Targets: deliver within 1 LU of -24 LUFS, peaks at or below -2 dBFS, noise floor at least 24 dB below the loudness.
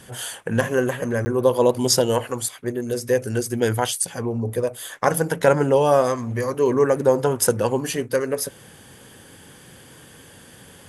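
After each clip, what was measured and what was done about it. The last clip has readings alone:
dropouts 1; longest dropout 10 ms; loudness -21.5 LUFS; peak -2.0 dBFS; loudness target -24.0 LUFS
-> interpolate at 1.25, 10 ms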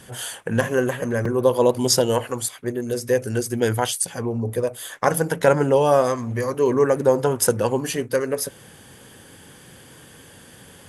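dropouts 0; loudness -21.5 LUFS; peak -2.0 dBFS; loudness target -24.0 LUFS
-> gain -2.5 dB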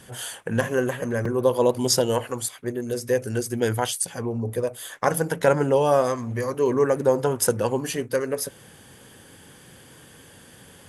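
loudness -24.0 LUFS; peak -4.5 dBFS; noise floor -49 dBFS

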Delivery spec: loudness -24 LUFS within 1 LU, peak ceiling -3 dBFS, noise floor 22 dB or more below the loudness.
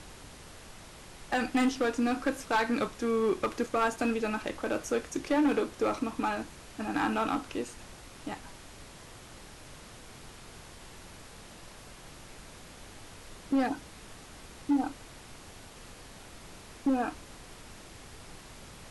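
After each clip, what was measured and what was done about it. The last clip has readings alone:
clipped 1.1%; flat tops at -21.5 dBFS; noise floor -50 dBFS; noise floor target -53 dBFS; loudness -31.0 LUFS; peak -21.5 dBFS; loudness target -24.0 LUFS
-> clip repair -21.5 dBFS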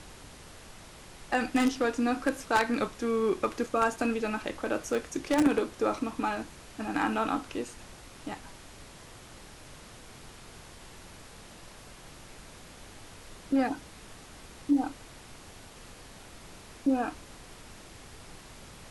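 clipped 0.0%; noise floor -50 dBFS; noise floor target -52 dBFS
-> noise print and reduce 6 dB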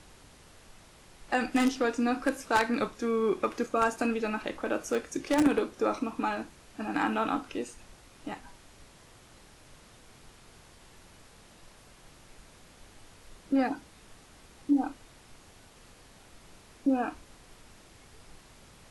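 noise floor -56 dBFS; loudness -30.0 LUFS; peak -12.5 dBFS; loudness target -24.0 LUFS
-> gain +6 dB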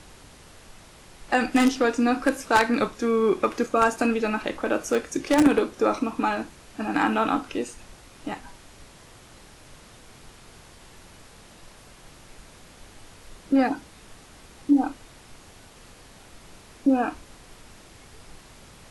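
loudness -24.0 LUFS; peak -6.5 dBFS; noise floor -50 dBFS

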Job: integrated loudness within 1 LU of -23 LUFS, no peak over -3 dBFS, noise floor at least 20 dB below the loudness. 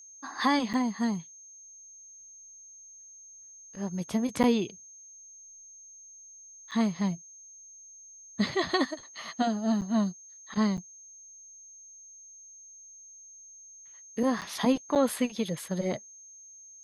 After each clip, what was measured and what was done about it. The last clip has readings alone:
dropouts 7; longest dropout 7.8 ms; steady tone 6400 Hz; tone level -48 dBFS; loudness -29.5 LUFS; peak -11.5 dBFS; loudness target -23.0 LUFS
-> interpolate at 0.73/4.43/6.71/9.81/10.77/14.41/14.95, 7.8 ms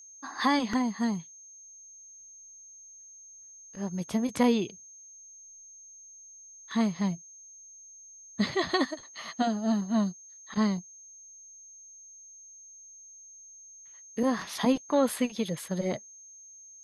dropouts 0; steady tone 6400 Hz; tone level -48 dBFS
-> notch 6400 Hz, Q 30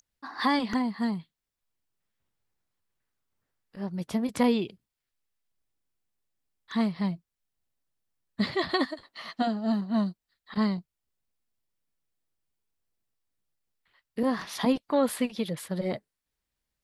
steady tone none; loudness -29.5 LUFS; peak -11.5 dBFS; loudness target -23.0 LUFS
-> gain +6.5 dB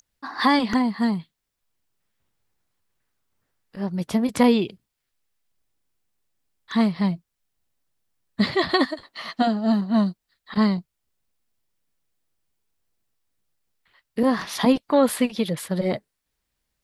loudness -23.0 LUFS; peak -5.0 dBFS; noise floor -80 dBFS

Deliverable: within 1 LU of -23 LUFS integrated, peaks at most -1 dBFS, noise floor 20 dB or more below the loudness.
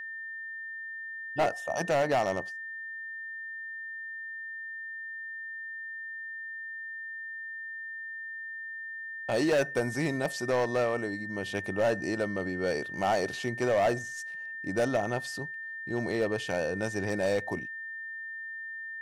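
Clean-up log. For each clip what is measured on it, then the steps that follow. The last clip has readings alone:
clipped 0.9%; flat tops at -21.0 dBFS; steady tone 1800 Hz; tone level -37 dBFS; loudness -32.5 LUFS; peak -21.0 dBFS; loudness target -23.0 LUFS
-> clip repair -21 dBFS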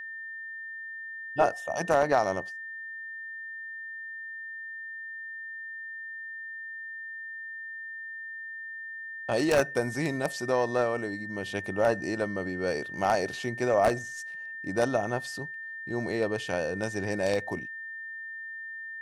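clipped 0.0%; steady tone 1800 Hz; tone level -37 dBFS
-> notch 1800 Hz, Q 30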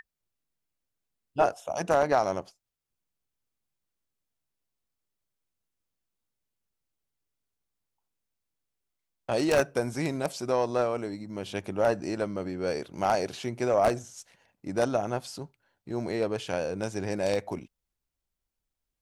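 steady tone none; loudness -29.0 LUFS; peak -11.5 dBFS; loudness target -23.0 LUFS
-> gain +6 dB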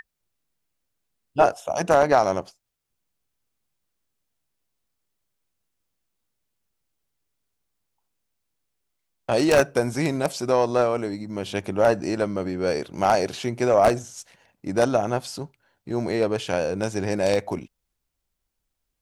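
loudness -23.0 LUFS; peak -5.5 dBFS; noise floor -79 dBFS

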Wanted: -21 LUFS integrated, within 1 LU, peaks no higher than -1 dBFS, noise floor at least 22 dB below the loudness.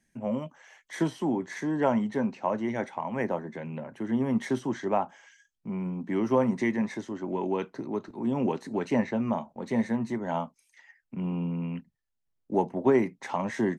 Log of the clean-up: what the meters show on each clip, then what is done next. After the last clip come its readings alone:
loudness -30.0 LUFS; peak -11.0 dBFS; loudness target -21.0 LUFS
-> gain +9 dB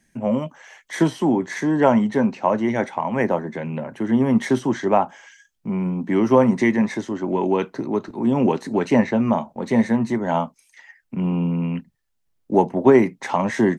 loudness -21.0 LUFS; peak -2.0 dBFS; noise floor -69 dBFS

